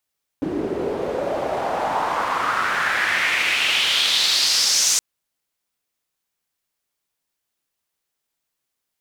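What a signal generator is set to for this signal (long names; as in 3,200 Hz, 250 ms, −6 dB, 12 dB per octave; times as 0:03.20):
filter sweep on noise pink, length 4.57 s bandpass, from 310 Hz, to 6,500 Hz, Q 3.1, exponential, gain ramp +8.5 dB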